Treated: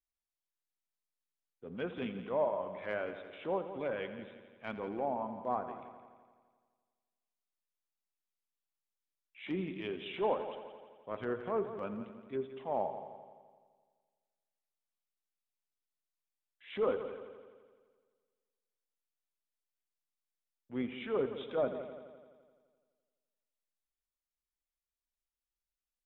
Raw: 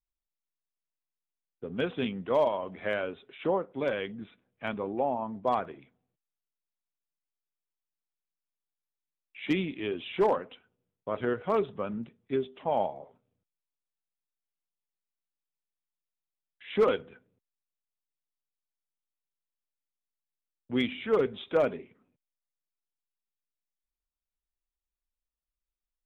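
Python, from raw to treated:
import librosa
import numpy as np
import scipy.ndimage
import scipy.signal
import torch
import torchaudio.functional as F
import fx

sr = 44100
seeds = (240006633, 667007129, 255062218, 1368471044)

y = fx.low_shelf(x, sr, hz=340.0, db=-3.0)
y = fx.env_lowpass_down(y, sr, base_hz=1100.0, full_db=-24.5)
y = fx.transient(y, sr, attack_db=-7, sustain_db=-2)
y = fx.echo_heads(y, sr, ms=85, heads='first and second', feedback_pct=57, wet_db=-14.0)
y = y * 10.0 ** (-3.5 / 20.0)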